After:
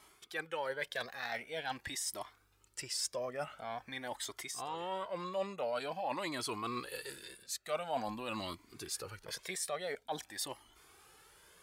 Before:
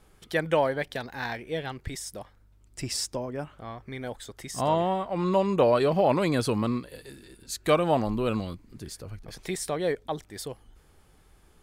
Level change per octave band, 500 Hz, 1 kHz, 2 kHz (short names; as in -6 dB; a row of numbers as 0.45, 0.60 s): -13.5, -10.0, -6.0 dB